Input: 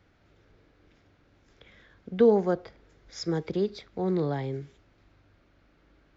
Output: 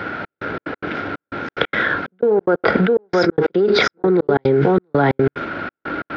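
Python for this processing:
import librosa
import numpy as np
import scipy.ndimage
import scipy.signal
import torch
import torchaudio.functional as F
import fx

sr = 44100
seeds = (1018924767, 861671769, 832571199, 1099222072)

y = np.where(x < 0.0, 10.0 ** (-3.0 / 20.0) * x, x)
y = scipy.signal.sosfilt(scipy.signal.butter(2, 200.0, 'highpass', fs=sr, output='sos'), y)
y = fx.peak_eq(y, sr, hz=1400.0, db=13.5, octaves=0.28)
y = y + 10.0 ** (-10.0 / 20.0) * np.pad(y, (int(677 * sr / 1000.0), 0))[:len(y)]
y = fx.dynamic_eq(y, sr, hz=420.0, q=2.8, threshold_db=-39.0, ratio=4.0, max_db=6)
y = scipy.ndimage.gaussian_filter1d(y, 2.4, mode='constant')
y = fx.notch(y, sr, hz=1200.0, q=12.0)
y = fx.step_gate(y, sr, bpm=182, pattern='xxx..xx.x.x', floor_db=-60.0, edge_ms=4.5)
y = fx.env_flatten(y, sr, amount_pct=100)
y = y * 10.0 ** (-1.0 / 20.0)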